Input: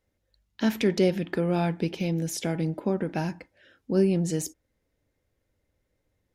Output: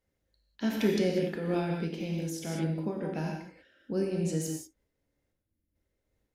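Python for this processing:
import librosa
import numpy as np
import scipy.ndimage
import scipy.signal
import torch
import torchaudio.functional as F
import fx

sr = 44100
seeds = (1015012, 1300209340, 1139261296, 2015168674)

y = fx.spec_box(x, sr, start_s=5.32, length_s=0.43, low_hz=360.0, high_hz=9400.0, gain_db=-12)
y = fx.rev_gated(y, sr, seeds[0], gate_ms=220, shape='flat', drr_db=0.0)
y = fx.am_noise(y, sr, seeds[1], hz=5.7, depth_pct=55)
y = y * 10.0 ** (-4.5 / 20.0)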